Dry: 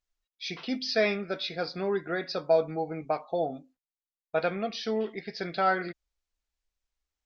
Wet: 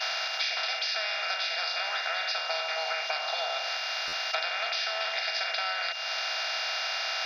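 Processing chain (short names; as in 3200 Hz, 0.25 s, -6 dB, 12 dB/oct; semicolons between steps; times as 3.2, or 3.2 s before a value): per-bin compression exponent 0.2; expander -29 dBFS; steep high-pass 700 Hz 36 dB/oct; high shelf 2000 Hz +11 dB; compressor 10:1, threshold -31 dBFS, peak gain reduction 17.5 dB; whine 2800 Hz -39 dBFS; stuck buffer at 4.07, samples 512, times 4; gain +2.5 dB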